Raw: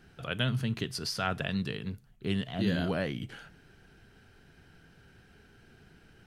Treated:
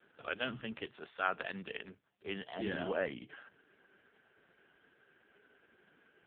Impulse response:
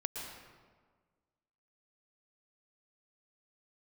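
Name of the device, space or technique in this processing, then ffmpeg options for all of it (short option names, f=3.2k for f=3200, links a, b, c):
telephone: -filter_complex "[0:a]asettb=1/sr,asplit=3[a][b][c];[a]atrim=end=0.734[d];[b]atrim=start=0.73:end=2.59,asetpts=PTS-STARTPTS,afade=t=in:d=0.004:c=qsin,afade=t=out:st=1.856:d=0.004:c=qsin,equalizer=f=220:t=o:w=1.8:g=-3[e];[c]atrim=start=2.586[f];[d][e]acrossfade=d=0.004:c1=hsin:c2=qsin[g];[g][f]acrossfade=d=0.004:c1=qsin:c2=hsin,highpass=350,lowpass=3.2k" -ar 8000 -c:a libopencore_amrnb -b:a 4750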